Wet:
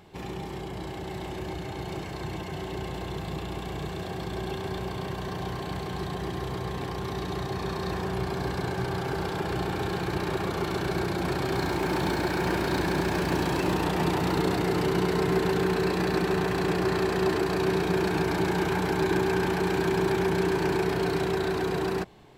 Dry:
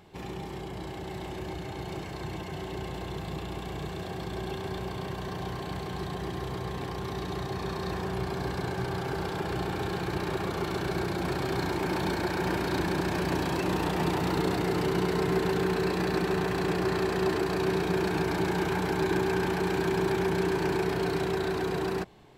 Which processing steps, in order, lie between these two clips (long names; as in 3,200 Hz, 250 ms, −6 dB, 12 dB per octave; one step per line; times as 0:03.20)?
0:11.45–0:13.73: feedback echo at a low word length 86 ms, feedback 80%, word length 8 bits, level −13 dB
level +2 dB